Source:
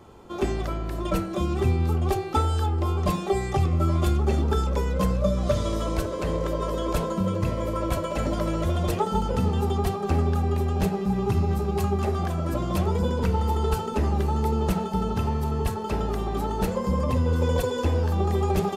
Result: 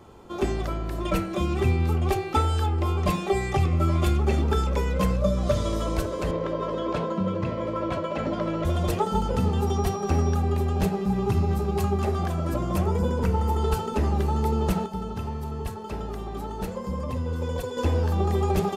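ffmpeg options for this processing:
ffmpeg -i in.wav -filter_complex "[0:a]asettb=1/sr,asplit=3[link_01][link_02][link_03];[link_01]atrim=end=1.014[link_04];[link_02]atrim=start=1.01:end=5.16,asetpts=PTS-STARTPTS,afade=type=in:duration=0.004:curve=qsin,afade=type=out:start_time=4.146:duration=0.004:curve=qsin,equalizer=frequency=2300:width_type=o:width=0.76:gain=5.5[link_05];[link_03]atrim=start=5.156[link_06];[link_04][link_05]acrossfade=duration=0.004:curve1=hsin:curve2=qsin[link_07];[link_07][link_06]acrossfade=duration=0.004:curve1=qsin:curve2=hsin,asettb=1/sr,asplit=3[link_08][link_09][link_10];[link_08]atrim=end=6.314[link_11];[link_09]atrim=start=6.31:end=8.65,asetpts=PTS-STARTPTS,afade=type=in:duration=0.004:curve=qsin,afade=type=out:start_time=2.336:duration=0.004:curve=qsin,highpass=120,lowpass=3600[link_12];[link_10]atrim=start=8.646[link_13];[link_11][link_12]acrossfade=duration=0.004:curve1=hsin:curve2=qsin[link_14];[link_14][link_13]acrossfade=duration=0.004:curve1=qsin:curve2=hsin,asettb=1/sr,asplit=3[link_15][link_16][link_17];[link_15]atrim=end=9.674[link_18];[link_16]atrim=start=9.67:end=10.35,asetpts=PTS-STARTPTS,afade=type=in:duration=0.004:curve=qsin,afade=type=out:start_time=0.676:duration=0.004:curve=qsin,aeval=exprs='val(0)+0.00562*sin(2*PI*5700*n/s)':channel_layout=same[link_19];[link_17]atrim=start=10.346[link_20];[link_18][link_19]acrossfade=duration=0.004:curve1=hsin:curve2=qsin[link_21];[link_21][link_20]acrossfade=duration=0.004:curve1=qsin:curve2=hsin,asettb=1/sr,asplit=3[link_22][link_23][link_24];[link_22]atrim=end=12.564[link_25];[link_23]atrim=start=12.56:end=13.58,asetpts=PTS-STARTPTS,afade=type=in:duration=0.004:curve=qsin,afade=type=out:start_time=1.016:duration=0.004:curve=qsin,equalizer=frequency=3800:width_type=o:width=0.77:gain=-6[link_26];[link_24]atrim=start=13.576[link_27];[link_25][link_26]acrossfade=duration=0.004:curve1=hsin:curve2=qsin[link_28];[link_28][link_27]acrossfade=duration=0.004:curve1=qsin:curve2=hsin,asplit=3[link_29][link_30][link_31];[link_29]atrim=end=14.862[link_32];[link_30]atrim=start=14.858:end=17.772,asetpts=PTS-STARTPTS,volume=-6dB[link_33];[link_31]atrim=start=17.768[link_34];[link_32][link_33]acrossfade=duration=0.004:curve1=hsin:curve2=hsin[link_35];[link_35][link_34]acrossfade=duration=0.004:curve1=hsin:curve2=hsin" out.wav

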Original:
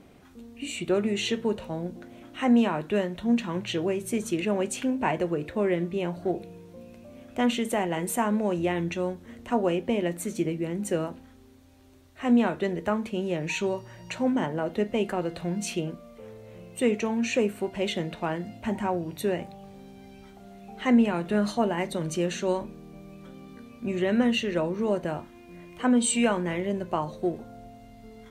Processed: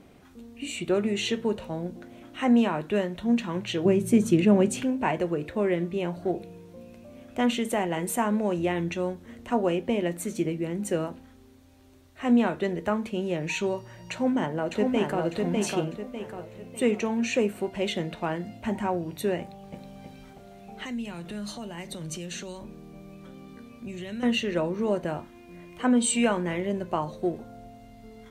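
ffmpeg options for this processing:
ffmpeg -i in.wav -filter_complex "[0:a]asettb=1/sr,asplit=3[link_01][link_02][link_03];[link_01]atrim=end=3.854[link_04];[link_02]atrim=start=3.85:end=4.84,asetpts=PTS-STARTPTS,afade=type=in:duration=0.004:curve=qsin,afade=type=out:start_time=0.986:duration=0.004:curve=qsin,equalizer=frequency=140:width_type=o:width=2.8:gain=11.5[link_05];[link_03]atrim=start=4.836[link_06];[link_04][link_05]acrossfade=duration=0.004:curve1=hsin:curve2=qsin[link_07];[link_07][link_06]acrossfade=duration=0.004:curve1=qsin:curve2=hsin,asplit=2[link_08][link_09];[link_09]afade=type=in:start_time=14.11:duration=0.01,afade=type=out:start_time=15.24:duration=0.01,aecho=0:1:600|1200|1800|2400|3000:0.707946|0.283178|0.113271|0.0453085|0.0181234[link_10];[link_08][link_10]amix=inputs=2:normalize=0,asplit=2[link_11][link_12];[link_12]afade=type=in:start_time=19.4:duration=0.01,afade=type=out:start_time=20.01:duration=0.01,aecho=0:1:320|640|960|1280|1600|1920|2240:0.749894|0.374947|0.187474|0.0937368|0.0468684|0.0234342|0.0117171[link_13];[link_11][link_13]amix=inputs=2:normalize=0,asettb=1/sr,asplit=3[link_14][link_15][link_16];[link_14]atrim=end=20.844[link_17];[link_15]atrim=start=20.84:end=24.23,asetpts=PTS-STARTPTS,afade=type=in:duration=0.004:curve=qsin,afade=type=out:start_time=3.386:duration=0.004:curve=qsin,acrossover=split=140|3000[link_18][link_19][link_20];[link_19]acompressor=threshold=-38dB:ratio=6:attack=3.2:release=140:knee=2.83:detection=peak[link_21];[link_18][link_21][link_20]amix=inputs=3:normalize=0[link_22];[link_16]atrim=start=24.226[link_23];[link_17][link_22]acrossfade=duration=0.004:curve1=hsin:curve2=qsin[link_24];[link_24][link_23]acrossfade=duration=0.004:curve1=qsin:curve2=hsin" out.wav

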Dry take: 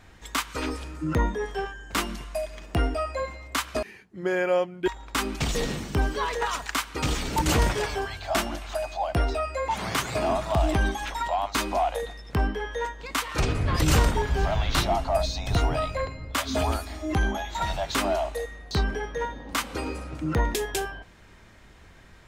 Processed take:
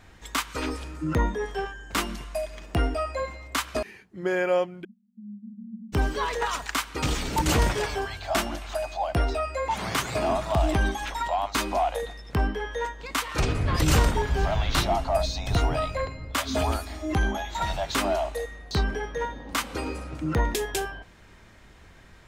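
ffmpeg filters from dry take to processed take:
ffmpeg -i in.wav -filter_complex "[0:a]asplit=3[link_01][link_02][link_03];[link_01]afade=type=out:start_time=4.83:duration=0.02[link_04];[link_02]asuperpass=centerf=210:order=12:qfactor=4.7,afade=type=in:start_time=4.83:duration=0.02,afade=type=out:start_time=5.92:duration=0.02[link_05];[link_03]afade=type=in:start_time=5.92:duration=0.02[link_06];[link_04][link_05][link_06]amix=inputs=3:normalize=0" out.wav

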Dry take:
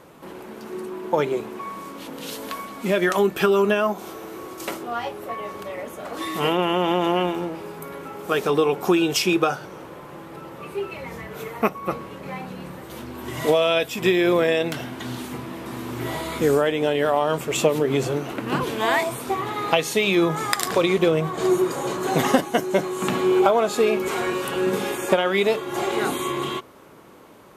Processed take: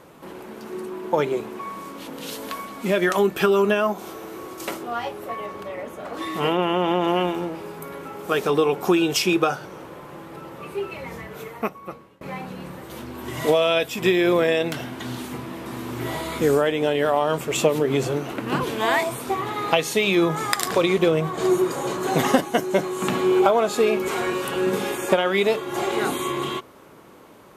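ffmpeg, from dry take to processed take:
ffmpeg -i in.wav -filter_complex "[0:a]asettb=1/sr,asplit=3[link_01][link_02][link_03];[link_01]atrim=end=5.464[link_04];[link_02]atrim=start=5.46:end=7.08,asetpts=PTS-STARTPTS,afade=type=in:duration=0.004:curve=qsin,afade=type=out:start_time=1.616:duration=0.004:curve=qsin,highshelf=frequency=4500:gain=-7[link_05];[link_03]atrim=start=7.076[link_06];[link_04][link_05]acrossfade=duration=0.004:curve1=hsin:curve2=qsin[link_07];[link_07][link_06]acrossfade=duration=0.004:curve1=qsin:curve2=hsin,asplit=2[link_08][link_09];[link_08]atrim=end=12.21,asetpts=PTS-STARTPTS,afade=type=out:start_time=11.13:duration=1.08:silence=0.0668344[link_10];[link_09]atrim=start=12.21,asetpts=PTS-STARTPTS,afade=type=in:duration=0.004:curve=hsin:silence=0.0668344[link_11];[link_10][link_11]concat=n=2:v=0:a=1" out.wav

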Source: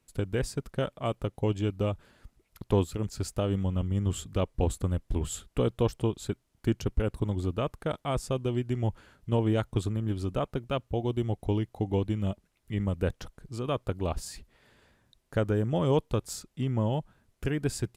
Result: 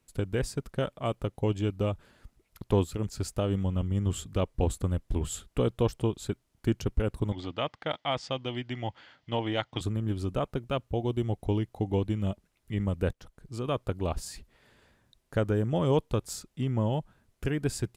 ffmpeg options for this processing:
ffmpeg -i in.wav -filter_complex "[0:a]asettb=1/sr,asplit=3[link_01][link_02][link_03];[link_01]atrim=end=7.324[link_04];[link_02]atrim=start=7.32:end=9.81,asetpts=PTS-STARTPTS,afade=type=in:duration=0.004:curve=qsin,afade=type=out:start_time=2.486:duration=0.004:curve=qsin,highpass=170,equalizer=frequency=200:width_type=q:width=4:gain=-10,equalizer=frequency=400:width_type=q:width=4:gain=-10,equalizer=frequency=790:width_type=q:width=4:gain=5,equalizer=frequency=2000:width_type=q:width=4:gain=9,equalizer=frequency=3200:width_type=q:width=4:gain=9,equalizer=frequency=4700:width_type=q:width=4:gain=5,lowpass=frequency=5900:width=0.5412,lowpass=frequency=5900:width=1.3066[link_05];[link_03]atrim=start=9.806[link_06];[link_04][link_05]acrossfade=duration=0.004:curve1=hsin:curve2=qsin[link_07];[link_07][link_06]acrossfade=duration=0.004:curve1=qsin:curve2=hsin,asplit=2[link_08][link_09];[link_08]atrim=end=13.13,asetpts=PTS-STARTPTS,afade=type=out:start_time=13.126:duration=0.004:curve=hsin:silence=0.199526[link_10];[link_09]atrim=start=13.13,asetpts=PTS-STARTPTS,afade=type=in:duration=0.46:silence=0.199526[link_11];[link_10][link_11]concat=n=2:v=0:a=1" out.wav

